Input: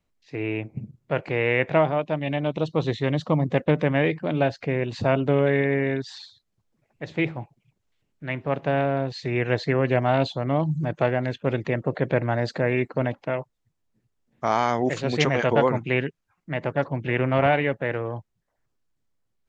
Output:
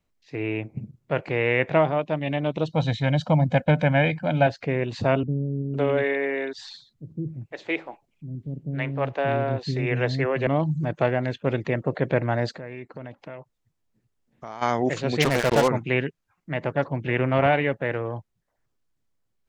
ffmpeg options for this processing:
-filter_complex "[0:a]asettb=1/sr,asplit=3[a][b][c];[a]atrim=end=2.724[d];[b]atrim=start=2.72:end=4.47,asetpts=PTS-STARTPTS,afade=t=in:d=0.004:c=qsin,afade=t=out:st=1.746:d=0.004:c=qsin,aecho=1:1:1.3:0.85,atrim=end_sample=77175[e];[c]atrim=start=4.466[f];[d][e]acrossfade=d=0.004:c1=hsin:c2=qsin[g];[g][f]acrossfade=d=0.004:c1=qsin:c2=hsin,asettb=1/sr,asplit=3[h][i][j];[h]atrim=end=5.234[k];[i]atrim=start=5.23:end=10.47,asetpts=PTS-STARTPTS,afade=t=in:d=0.004:c=qsin,afade=t=out:st=5.236:d=0.004:c=qsin,acrossover=split=290[l][m];[m]adelay=510[n];[l][n]amix=inputs=2:normalize=0,atrim=end_sample=231084[o];[j]atrim=start=10.466[p];[k][o]acrossfade=d=0.004:c1=hsin:c2=qsin[q];[q][p]acrossfade=d=0.004:c1=qsin:c2=hsin,asplit=3[r][s][t];[r]afade=t=out:st=12.51:d=0.02[u];[s]acompressor=threshold=-40dB:ratio=2.5:attack=3.2:release=140:knee=1:detection=peak,afade=t=in:st=12.51:d=0.02,afade=t=out:st=14.61:d=0.02[v];[t]afade=t=in:st=14.61:d=0.02[w];[u][v][w]amix=inputs=3:normalize=0,asettb=1/sr,asplit=3[x][y][z];[x]atrim=end=15.224[aa];[y]atrim=start=15.22:end=15.68,asetpts=PTS-STARTPTS,afade=t=in:d=0.004:c=qsin,afade=t=out:st=0.456:d=0.004:c=qsin,acrusher=bits=3:mix=0:aa=0.5[ab];[z]atrim=start=15.676[ac];[aa][ab]acrossfade=d=0.004:c1=hsin:c2=qsin[ad];[ad][ac]acrossfade=d=0.004:c1=qsin:c2=hsin"

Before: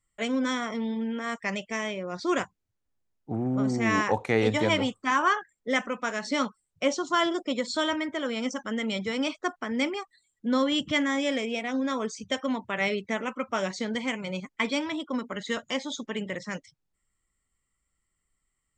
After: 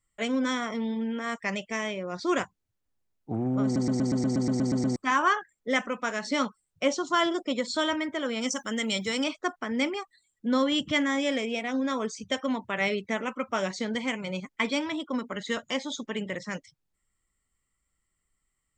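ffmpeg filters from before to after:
-filter_complex "[0:a]asettb=1/sr,asplit=3[a][b][c];[a]atrim=end=8.414[d];[b]atrim=start=8.41:end=9.24,asetpts=PTS-STARTPTS,afade=t=in:d=0.004:c=qsin,afade=t=out:st=0.826:d=0.004:c=qsin,aemphasis=mode=production:type=75fm[e];[c]atrim=start=9.236[f];[d][e]acrossfade=d=0.004:c1=hsin:c2=qsin[g];[g][f]acrossfade=d=0.004:c1=qsin:c2=hsin,asplit=12[h][i][j][k][l][m][n][o][p][q][r][s];[h]atrim=end=3.762[t];[i]atrim=start=3.638:end=3.762[u];[j]atrim=start=3.638:end=3.762[v];[k]atrim=start=3.638:end=3.762[w];[l]atrim=start=3.638:end=3.762[x];[m]atrim=start=3.638:end=3.762[y];[n]atrim=start=3.638:end=3.762[z];[o]atrim=start=3.638:end=3.762[aa];[p]atrim=start=3.638:end=3.762[ab];[q]atrim=start=3.638:end=3.762[ac];[r]atrim=start=3.638:end=3.762[ad];[s]atrim=start=4.958[ae];[t][u]acrossfade=d=0.004:c1=hsin:c2=hsin[af];[af][v]acrossfade=d=0.004:c1=hsin:c2=hsin[ag];[ag][w]acrossfade=d=0.004:c1=hsin:c2=hsin[ah];[ah][x]acrossfade=d=0.004:c1=hsin:c2=hsin[ai];[ai][y]acrossfade=d=0.004:c1=hsin:c2=hsin[aj];[aj][z]acrossfade=d=0.004:c1=hsin:c2=hsin[ak];[ak][aa]acrossfade=d=0.004:c1=hsin:c2=hsin[al];[al][ab]acrossfade=d=0.004:c1=hsin:c2=hsin[am];[am][ac]acrossfade=d=0.004:c1=hsin:c2=hsin[an];[an][ad]acrossfade=d=0.004:c1=hsin:c2=hsin[ao];[ao][ae]acrossfade=d=0.004:c1=hsin:c2=hsin"

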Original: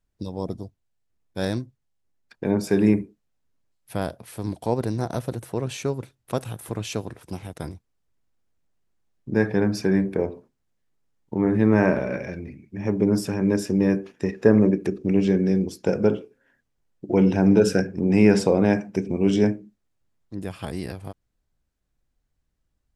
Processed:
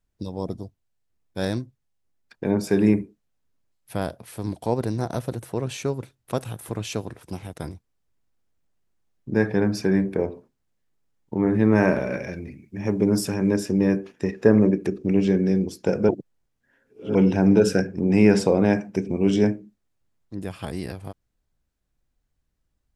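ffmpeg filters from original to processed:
-filter_complex "[0:a]asettb=1/sr,asplit=3[a][b][c];[a]atrim=end=11.754[d];[b]atrim=start=11.75:end=13.51,asetpts=PTS-STARTPTS,afade=t=in:d=0.004:c=qsin,afade=t=out:st=1.756:d=0.004:c=qsin,highshelf=f=4.5k:g=7[e];[c]atrim=start=13.506[f];[d][e]acrossfade=d=0.004:c1=hsin:c2=qsin[g];[g][f]acrossfade=d=0.004:c1=qsin:c2=hsin,asplit=3[h][i][j];[h]atrim=end=16.092[k];[i]atrim=start=16.088:end=17.152,asetpts=PTS-STARTPTS,areverse[l];[j]atrim=start=17.148[m];[k][l]acrossfade=d=0.004:c1=hsin:c2=hsin[n];[n][m]acrossfade=d=0.004:c1=hsin:c2=hsin"

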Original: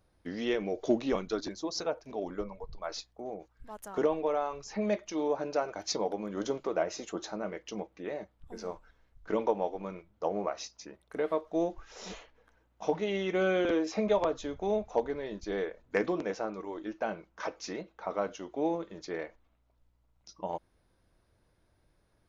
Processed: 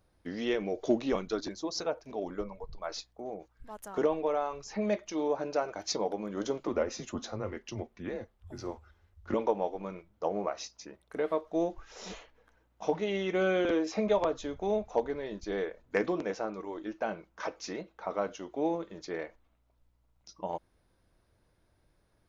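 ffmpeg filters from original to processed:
-filter_complex "[0:a]asettb=1/sr,asplit=3[a][b][c];[a]atrim=end=6.674[d];[b]atrim=start=6.67:end=9.34,asetpts=PTS-STARTPTS,afade=t=in:d=0.004:c=qsin,afade=t=out:st=2.666:d=0.004:c=qsin,afreqshift=-97[e];[c]atrim=start=9.336[f];[d][e]acrossfade=d=0.004:c1=hsin:c2=qsin[g];[g][f]acrossfade=d=0.004:c1=qsin:c2=hsin"

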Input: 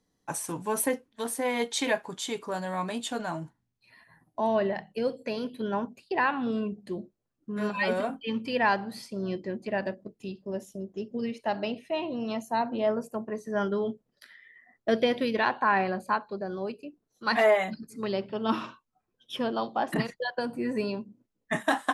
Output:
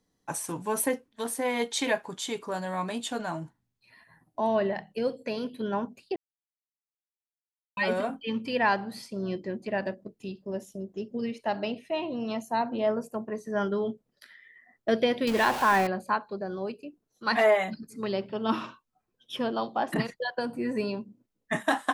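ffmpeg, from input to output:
-filter_complex "[0:a]asettb=1/sr,asplit=3[a][b][c];[a]atrim=end=15.274[d];[b]atrim=start=15.27:end=15.87,asetpts=PTS-STARTPTS,afade=t=in:d=0.004:c=qsin,afade=t=out:st=0.596:d=0.004:c=qsin,aeval=exprs='val(0)+0.5*0.0376*sgn(val(0))':c=same[e];[c]atrim=start=15.866[f];[d][e]acrossfade=d=0.004:c1=hsin:c2=qsin[g];[g][f]acrossfade=d=0.004:c1=qsin:c2=hsin,asplit=3[h][i][j];[h]atrim=end=6.16,asetpts=PTS-STARTPTS,afade=t=out:st=6.156:d=0.004:c=hsin[k];[i]atrim=start=6.16:end=7.77,asetpts=PTS-STARTPTS,volume=0[l];[j]atrim=start=7.77,asetpts=PTS-STARTPTS,afade=t=in:d=0.004:c=hsin[m];[k][l][m]concat=n=3:v=0:a=1"

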